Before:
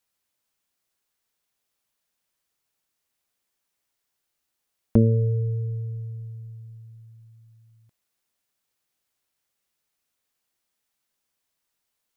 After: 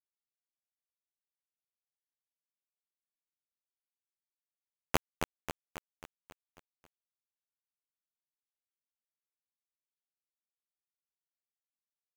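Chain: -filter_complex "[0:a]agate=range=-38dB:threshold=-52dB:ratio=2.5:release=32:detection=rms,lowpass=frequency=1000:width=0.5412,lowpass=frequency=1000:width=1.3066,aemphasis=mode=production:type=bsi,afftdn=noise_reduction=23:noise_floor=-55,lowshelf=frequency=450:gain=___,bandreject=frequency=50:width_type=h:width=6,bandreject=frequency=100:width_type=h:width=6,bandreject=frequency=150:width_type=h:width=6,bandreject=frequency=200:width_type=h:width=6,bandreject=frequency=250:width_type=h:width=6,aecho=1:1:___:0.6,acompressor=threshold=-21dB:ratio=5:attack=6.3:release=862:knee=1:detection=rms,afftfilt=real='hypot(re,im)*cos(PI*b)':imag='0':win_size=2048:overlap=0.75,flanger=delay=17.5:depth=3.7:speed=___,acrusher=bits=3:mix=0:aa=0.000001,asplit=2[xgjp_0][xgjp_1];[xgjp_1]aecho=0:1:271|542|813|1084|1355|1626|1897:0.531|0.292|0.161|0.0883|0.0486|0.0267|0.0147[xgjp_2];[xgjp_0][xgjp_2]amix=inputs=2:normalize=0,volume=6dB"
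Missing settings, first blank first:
10.5, 1.2, 2.6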